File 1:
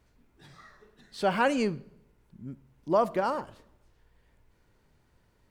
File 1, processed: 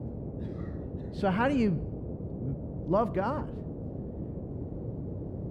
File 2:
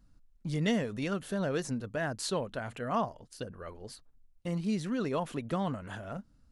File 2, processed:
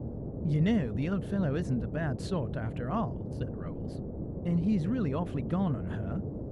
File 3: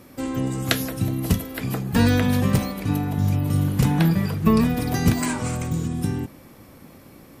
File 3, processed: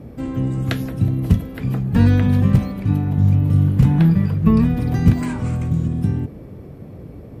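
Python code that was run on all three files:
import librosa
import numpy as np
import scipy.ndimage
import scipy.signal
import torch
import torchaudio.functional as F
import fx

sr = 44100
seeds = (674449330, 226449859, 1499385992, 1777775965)

y = fx.dmg_noise_band(x, sr, seeds[0], low_hz=52.0, high_hz=530.0, level_db=-40.0)
y = fx.bass_treble(y, sr, bass_db=11, treble_db=-10)
y = F.gain(torch.from_numpy(y), -3.5).numpy()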